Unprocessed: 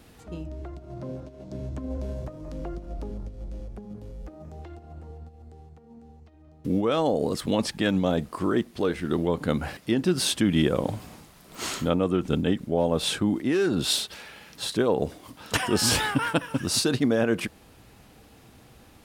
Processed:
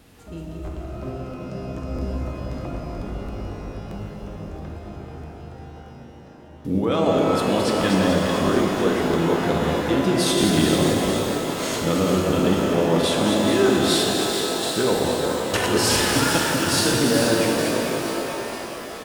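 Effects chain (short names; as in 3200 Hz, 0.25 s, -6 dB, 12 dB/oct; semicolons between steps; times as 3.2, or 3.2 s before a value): reverse delay 0.15 s, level -5 dB; on a send: frequency-shifting echo 0.435 s, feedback 55%, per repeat +52 Hz, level -8 dB; on the sum: crackling interface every 0.65 s, samples 1024, repeat, from 0.64; shimmer reverb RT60 3.7 s, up +12 st, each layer -8 dB, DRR -0.5 dB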